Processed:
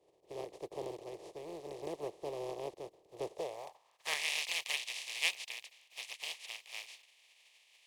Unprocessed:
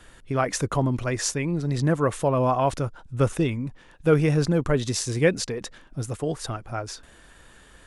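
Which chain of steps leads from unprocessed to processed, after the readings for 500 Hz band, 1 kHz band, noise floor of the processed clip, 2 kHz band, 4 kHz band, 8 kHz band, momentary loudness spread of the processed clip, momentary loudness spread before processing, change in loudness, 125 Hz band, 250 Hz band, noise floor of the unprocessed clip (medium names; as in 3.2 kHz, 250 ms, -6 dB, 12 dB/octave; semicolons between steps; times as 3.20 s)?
-18.0 dB, -19.0 dB, -71 dBFS, -6.5 dB, -3.0 dB, -13.0 dB, 16 LU, 12 LU, -15.0 dB, -35.5 dB, -26.5 dB, -52 dBFS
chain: spectral contrast reduction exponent 0.14; band-pass sweep 360 Hz -> 2.4 kHz, 3.25–4.30 s; static phaser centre 600 Hz, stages 4; trim -1.5 dB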